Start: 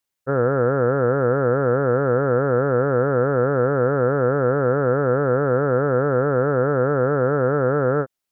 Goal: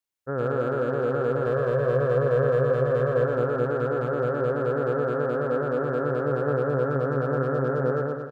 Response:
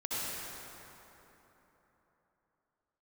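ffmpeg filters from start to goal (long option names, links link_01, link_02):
-filter_complex "[0:a]asettb=1/sr,asplit=3[link_01][link_02][link_03];[link_01]atrim=end=1.464[link_04];[link_02]atrim=start=1.46:end=3.25,asetpts=PTS-STARTPTS,afade=type=in:duration=0.004:curve=qsin,afade=type=out:start_time=1.786:duration=0.004:curve=qsin,aecho=1:1:1.8:0.63,atrim=end_sample=78939[link_05];[link_03]atrim=start=3.246[link_06];[link_04][link_05]acrossfade=duration=0.004:curve1=hsin:curve2=qsin[link_07];[link_07][link_06]acrossfade=duration=0.004:curve1=qsin:curve2=hsin,asoftclip=type=hard:threshold=-10.5dB,aecho=1:1:120|228|325.2|412.7|491.4:0.631|0.398|0.251|0.158|0.1,volume=-8dB"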